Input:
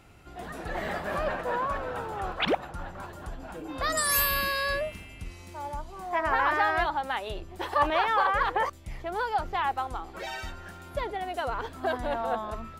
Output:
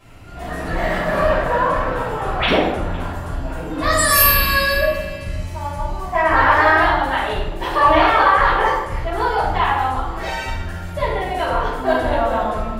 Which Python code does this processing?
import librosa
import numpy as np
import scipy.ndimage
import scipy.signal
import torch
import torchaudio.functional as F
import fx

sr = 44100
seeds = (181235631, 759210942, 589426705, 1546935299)

y = x + 10.0 ** (-22.0 / 20.0) * np.pad(x, (int(508 * sr / 1000.0), 0))[:len(x)]
y = fx.room_shoebox(y, sr, seeds[0], volume_m3=330.0, walls='mixed', distance_m=5.7)
y = y * librosa.db_to_amplitude(-2.0)